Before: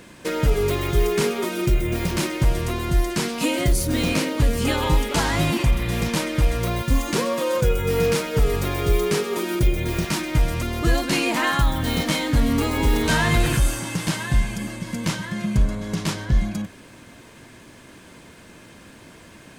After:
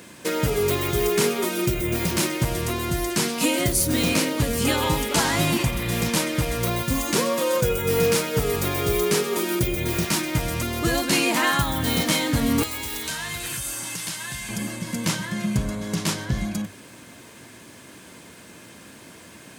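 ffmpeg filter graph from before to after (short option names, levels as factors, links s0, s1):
-filter_complex "[0:a]asettb=1/sr,asplit=3[s0][s1][s2];[s0]atrim=end=12.634[s3];[s1]atrim=start=12.63:end=14.49,asetpts=PTS-STARTPTS,afade=t=in:d=0.004:c=qsin,afade=t=out:st=1.856:d=0.004:c=qsin,tiltshelf=f=1100:g=-7.5,acrossover=split=85|1300[s4][s5][s6];[s4]acompressor=threshold=0.0224:ratio=4[s7];[s5]acompressor=threshold=0.0126:ratio=4[s8];[s6]acompressor=threshold=0.0178:ratio=4[s9];[s7][s8][s9]amix=inputs=3:normalize=0[s10];[s2]atrim=start=14.486[s11];[s3][s10]acrossfade=d=0.004:c1=hsin:c2=qsin[s12];[s12][s11]acrossfade=d=0.004:c1=qsin:c2=hsin,highpass=84,highshelf=f=6100:g=8,bandreject=f=50:t=h:w=6,bandreject=f=100:t=h:w=6,bandreject=f=150:t=h:w=6"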